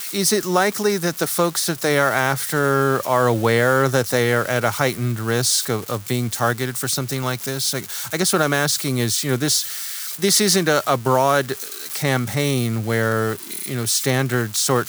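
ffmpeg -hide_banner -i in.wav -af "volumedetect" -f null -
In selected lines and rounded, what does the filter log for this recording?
mean_volume: -20.2 dB
max_volume: -3.2 dB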